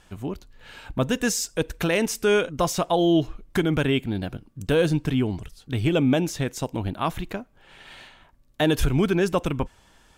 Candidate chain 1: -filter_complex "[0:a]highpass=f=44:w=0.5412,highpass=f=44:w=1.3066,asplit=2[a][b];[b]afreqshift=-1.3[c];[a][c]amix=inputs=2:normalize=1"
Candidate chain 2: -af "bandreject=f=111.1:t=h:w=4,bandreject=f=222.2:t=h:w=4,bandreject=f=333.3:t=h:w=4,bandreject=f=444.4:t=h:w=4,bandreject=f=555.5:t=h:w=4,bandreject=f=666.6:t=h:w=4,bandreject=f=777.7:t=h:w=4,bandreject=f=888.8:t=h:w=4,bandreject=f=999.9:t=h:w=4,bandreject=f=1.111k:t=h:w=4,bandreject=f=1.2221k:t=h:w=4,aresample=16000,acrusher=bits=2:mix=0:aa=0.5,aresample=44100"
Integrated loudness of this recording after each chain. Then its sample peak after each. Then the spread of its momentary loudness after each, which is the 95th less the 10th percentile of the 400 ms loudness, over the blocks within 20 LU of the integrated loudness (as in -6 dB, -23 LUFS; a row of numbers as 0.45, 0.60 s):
-27.0, -25.0 LUFS; -11.5, -8.0 dBFS; 14, 12 LU